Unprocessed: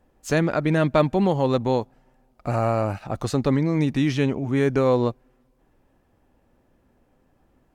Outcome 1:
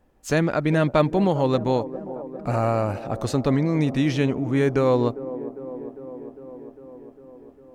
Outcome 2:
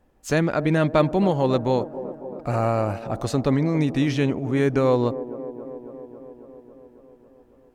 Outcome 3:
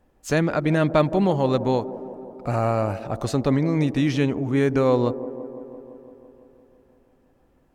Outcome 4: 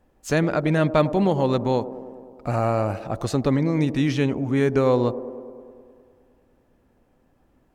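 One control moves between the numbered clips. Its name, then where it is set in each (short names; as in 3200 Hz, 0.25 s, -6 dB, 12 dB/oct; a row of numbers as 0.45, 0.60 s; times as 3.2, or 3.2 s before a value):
band-limited delay, time: 0.402, 0.274, 0.169, 0.103 s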